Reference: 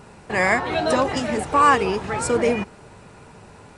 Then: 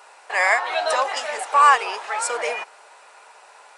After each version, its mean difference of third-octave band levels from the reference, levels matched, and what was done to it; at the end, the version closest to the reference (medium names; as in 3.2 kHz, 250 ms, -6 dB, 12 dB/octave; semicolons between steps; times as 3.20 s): 9.0 dB: high-pass 640 Hz 24 dB/octave; trim +2 dB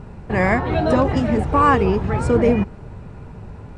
5.5 dB: RIAA curve playback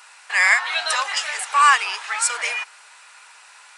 14.0 dB: Bessel high-pass 1.7 kHz, order 4; trim +8.5 dB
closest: second